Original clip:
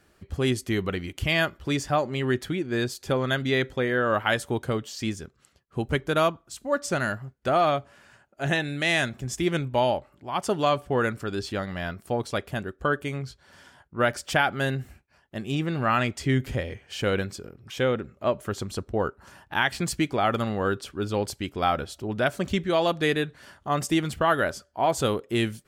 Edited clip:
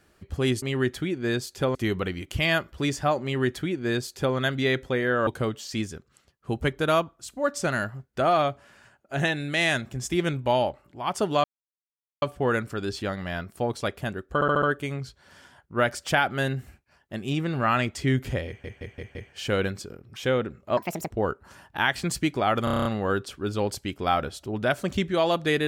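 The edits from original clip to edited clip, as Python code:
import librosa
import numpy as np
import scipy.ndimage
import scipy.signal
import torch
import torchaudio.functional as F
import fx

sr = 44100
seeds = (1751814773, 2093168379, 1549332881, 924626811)

y = fx.edit(x, sr, fx.duplicate(start_s=2.1, length_s=1.13, to_s=0.62),
    fx.cut(start_s=4.14, length_s=0.41),
    fx.insert_silence(at_s=10.72, length_s=0.78),
    fx.stutter(start_s=12.84, slice_s=0.07, count=5),
    fx.stutter(start_s=16.69, slice_s=0.17, count=5),
    fx.speed_span(start_s=18.31, length_s=0.56, speed=1.68),
    fx.stutter(start_s=20.41, slice_s=0.03, count=8), tone=tone)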